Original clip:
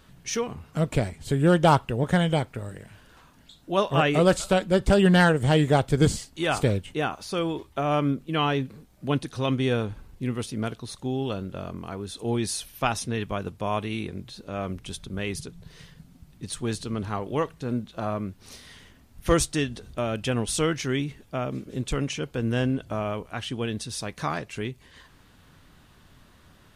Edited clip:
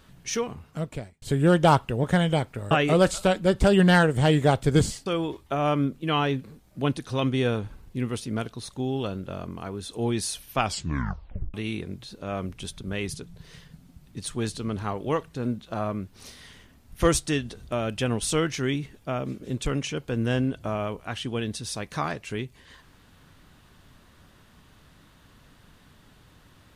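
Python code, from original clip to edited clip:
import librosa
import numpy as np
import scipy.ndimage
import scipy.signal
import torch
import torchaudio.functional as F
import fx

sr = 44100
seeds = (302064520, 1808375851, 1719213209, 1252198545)

y = fx.edit(x, sr, fx.fade_out_span(start_s=0.41, length_s=0.81),
    fx.cut(start_s=2.71, length_s=1.26),
    fx.cut(start_s=6.32, length_s=1.0),
    fx.tape_stop(start_s=12.85, length_s=0.95), tone=tone)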